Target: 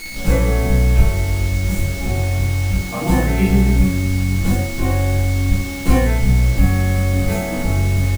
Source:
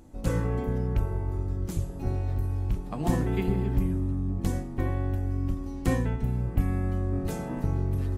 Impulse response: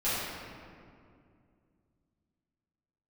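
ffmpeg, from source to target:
-filter_complex "[0:a]asettb=1/sr,asplit=3[link_01][link_02][link_03];[link_01]atrim=end=2.054[link_04];[link_02]atrim=start=2.05:end=4.1,asetpts=PTS-STARTPTS,afade=type=in:duration=0.004:curve=qsin,afade=type=out:start_time=2.046:duration=0.004:curve=qsin,highpass=frequency=47:poles=1[link_05];[link_03]atrim=start=4.096[link_06];[link_04][link_05]acrossfade=duration=0.004:curve1=hsin:curve2=qsin[link_07];[link_07][link_06]acrossfade=duration=0.004:curve1=qsin:curve2=hsin[link_08];[1:a]atrim=start_sample=2205,atrim=end_sample=3087[link_09];[link_08][link_09]afir=irnorm=-1:irlink=0,aeval=exprs='val(0)+0.0158*sin(2*PI*2200*n/s)':channel_layout=same,acrusher=bits=5:mix=0:aa=0.000001,aecho=1:1:15|78:0.398|0.316,volume=4dB"

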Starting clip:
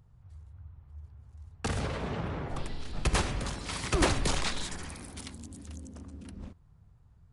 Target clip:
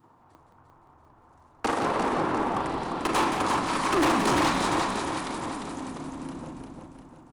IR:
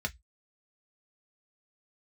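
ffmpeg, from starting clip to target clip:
-filter_complex "[0:a]asplit=2[link_01][link_02];[1:a]atrim=start_sample=2205,asetrate=22491,aresample=44100,adelay=38[link_03];[link_02][link_03]afir=irnorm=-1:irlink=0,volume=-13.5dB[link_04];[link_01][link_04]amix=inputs=2:normalize=0,acompressor=mode=upward:threshold=-43dB:ratio=2.5,highpass=frequency=300:width_type=q:width=3.5,equalizer=frequency=970:width_type=o:width=1.3:gain=15,asplit=2[link_05][link_06];[link_06]aecho=0:1:350|700|1050|1400|1750|2100:0.501|0.256|0.13|0.0665|0.0339|0.0173[link_07];[link_05][link_07]amix=inputs=2:normalize=0,adynamicequalizer=threshold=0.0224:dfrequency=620:dqfactor=0.75:tfrequency=620:tqfactor=0.75:attack=5:release=100:ratio=0.375:range=2:mode=cutabove:tftype=bell,asoftclip=type=hard:threshold=-20dB,asplit=6[link_08][link_09][link_10][link_11][link_12][link_13];[link_09]adelay=173,afreqshift=-110,volume=-7.5dB[link_14];[link_10]adelay=346,afreqshift=-220,volume=-15.2dB[link_15];[link_11]adelay=519,afreqshift=-330,volume=-23dB[link_16];[link_12]adelay=692,afreqshift=-440,volume=-30.7dB[link_17];[link_13]adelay=865,afreqshift=-550,volume=-38.5dB[link_18];[link_08][link_14][link_15][link_16][link_17][link_18]amix=inputs=6:normalize=0"

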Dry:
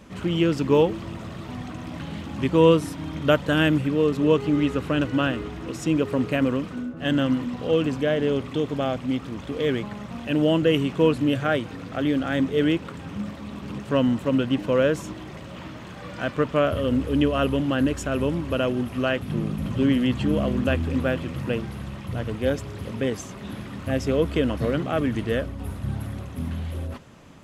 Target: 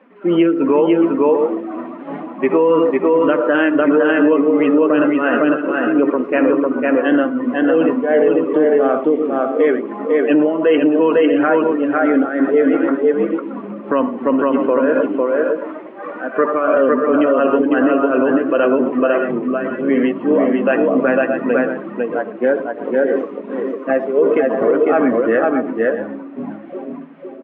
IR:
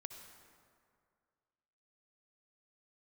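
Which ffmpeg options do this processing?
-filter_complex "[0:a]lowpass=frequency=2300:width=0.5412,lowpass=frequency=2300:width=1.3066,flanger=delay=3.8:depth=7.7:regen=50:speed=0.37:shape=triangular,highpass=frequency=280:width=0.5412,highpass=frequency=280:width=1.3066[link_01];[1:a]atrim=start_sample=2205,afade=type=out:start_time=0.2:duration=0.01,atrim=end_sample=9261[link_02];[link_01][link_02]afir=irnorm=-1:irlink=0,tremolo=f=2.8:d=0.72,aecho=1:1:501|624:0.708|0.266,afftdn=noise_reduction=13:noise_floor=-47,alimiter=level_in=28dB:limit=-1dB:release=50:level=0:latency=1,volume=-4.5dB"

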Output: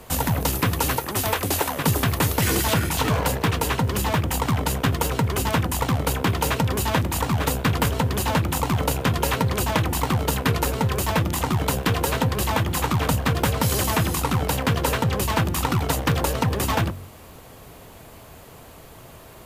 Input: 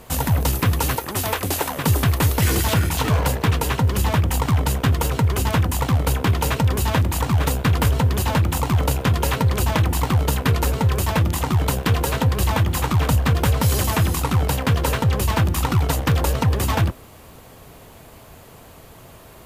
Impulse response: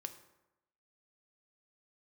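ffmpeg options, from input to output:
-filter_complex "[0:a]bandreject=frequency=46.29:width_type=h:width=4,bandreject=frequency=92.58:width_type=h:width=4,bandreject=frequency=138.87:width_type=h:width=4,bandreject=frequency=185.16:width_type=h:width=4,bandreject=frequency=231.45:width_type=h:width=4,acrossover=split=130|3800[link_01][link_02][link_03];[link_01]acompressor=threshold=-27dB:ratio=6[link_04];[link_04][link_02][link_03]amix=inputs=3:normalize=0,asettb=1/sr,asplit=3[link_05][link_06][link_07];[link_05]atrim=end=3.184[link_08];[link_06]atrim=start=3.18:end=4.47,asetpts=PTS-STARTPTS,afade=type=in:duration=0.004:curve=qsin,afade=type=out:start_time=1.286:duration=0.004:curve=qsin,asoftclip=type=hard:threshold=-12.5dB[link_09];[link_07]atrim=start=4.466[link_10];[link_08][link_09]acrossfade=duration=0.004:curve1=hsin:curve2=qsin[link_11];[link_11][link_10]acrossfade=duration=0.004:curve1=qsin:curve2=hsin"

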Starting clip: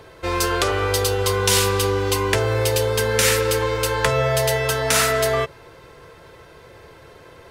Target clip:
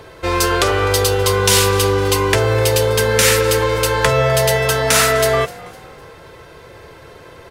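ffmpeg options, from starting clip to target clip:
ffmpeg -i in.wav -filter_complex "[0:a]acontrast=30,asplit=4[link_01][link_02][link_03][link_04];[link_02]adelay=253,afreqshift=50,volume=-21dB[link_05];[link_03]adelay=506,afreqshift=100,volume=-29dB[link_06];[link_04]adelay=759,afreqshift=150,volume=-36.9dB[link_07];[link_01][link_05][link_06][link_07]amix=inputs=4:normalize=0" out.wav

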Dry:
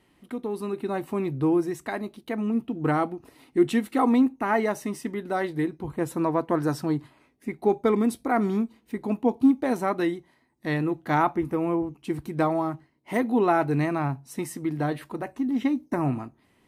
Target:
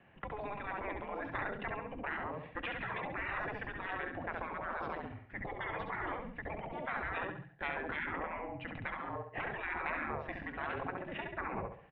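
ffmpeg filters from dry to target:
ffmpeg -i in.wav -af "aemphasis=mode=reproduction:type=50kf,atempo=1.4,highpass=frequency=360:width_type=q:width=0.5412,highpass=frequency=360:width_type=q:width=1.307,lowpass=frequency=3100:width_type=q:width=0.5176,lowpass=frequency=3100:width_type=q:width=0.7071,lowpass=frequency=3100:width_type=q:width=1.932,afreqshift=-200,aecho=1:1:68|136|204|272|340:0.501|0.195|0.0762|0.0297|0.0116,afftfilt=real='re*lt(hypot(re,im),0.0562)':imag='im*lt(hypot(re,im),0.0562)':win_size=1024:overlap=0.75,volume=4.5dB" out.wav

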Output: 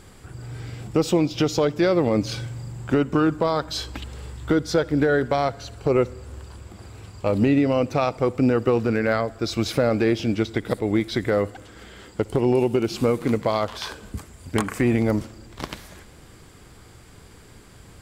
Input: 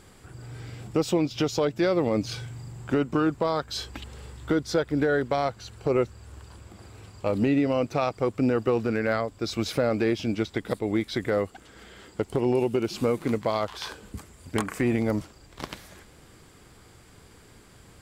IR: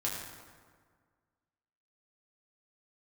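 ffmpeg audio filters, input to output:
-filter_complex "[0:a]lowshelf=frequency=120:gain=4,asplit=2[link_01][link_02];[1:a]atrim=start_sample=2205,adelay=59[link_03];[link_02][link_03]afir=irnorm=-1:irlink=0,volume=-25dB[link_04];[link_01][link_04]amix=inputs=2:normalize=0,volume=3.5dB"

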